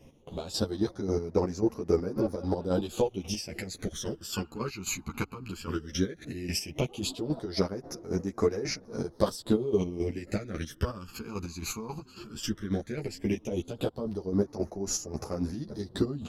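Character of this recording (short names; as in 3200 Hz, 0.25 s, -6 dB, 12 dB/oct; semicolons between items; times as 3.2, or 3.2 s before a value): phasing stages 12, 0.15 Hz, lowest notch 570–3200 Hz; chopped level 3.7 Hz, depth 65%, duty 35%; a shimmering, thickened sound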